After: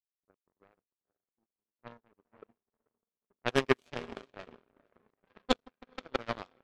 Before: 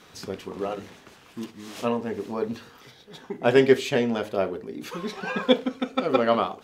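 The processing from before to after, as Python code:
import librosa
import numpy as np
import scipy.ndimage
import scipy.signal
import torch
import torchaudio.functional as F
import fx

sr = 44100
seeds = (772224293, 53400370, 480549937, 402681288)

y = fx.echo_diffused(x, sr, ms=470, feedback_pct=50, wet_db=-6.5)
y = fx.env_lowpass(y, sr, base_hz=530.0, full_db=-15.5)
y = fx.power_curve(y, sr, exponent=3.0)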